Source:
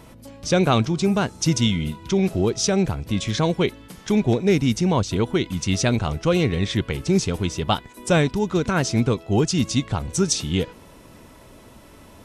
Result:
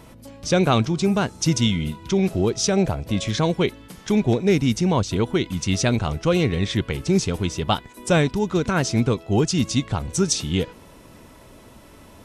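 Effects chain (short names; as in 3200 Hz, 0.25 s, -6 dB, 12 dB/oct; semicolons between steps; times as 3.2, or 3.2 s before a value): 2.77–3.29 bell 620 Hz +9 dB 0.59 oct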